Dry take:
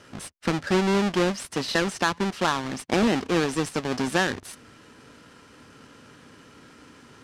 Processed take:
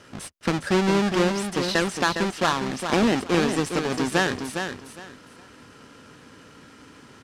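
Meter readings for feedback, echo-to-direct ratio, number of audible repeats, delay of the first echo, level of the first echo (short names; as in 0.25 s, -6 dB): 22%, -7.0 dB, 3, 0.409 s, -7.0 dB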